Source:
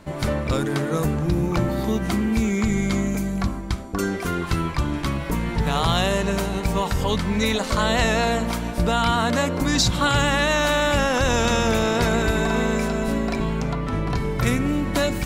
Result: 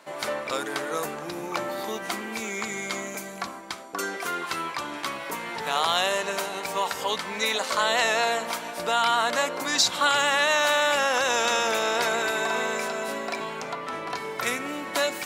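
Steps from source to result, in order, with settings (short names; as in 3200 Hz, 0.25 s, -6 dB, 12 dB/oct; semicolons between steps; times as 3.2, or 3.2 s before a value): HPF 580 Hz 12 dB/oct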